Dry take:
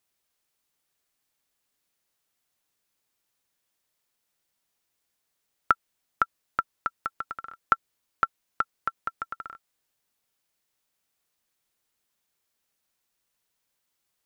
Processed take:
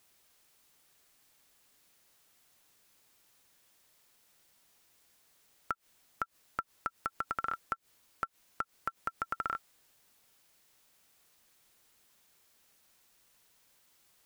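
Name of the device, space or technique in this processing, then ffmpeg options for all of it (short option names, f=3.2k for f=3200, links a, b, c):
de-esser from a sidechain: -filter_complex "[0:a]asplit=2[a][b];[b]highpass=f=4.9k:p=1,apad=whole_len=628775[c];[a][c]sidechaincompress=threshold=-46dB:ratio=10:attack=0.53:release=88,volume=11dB"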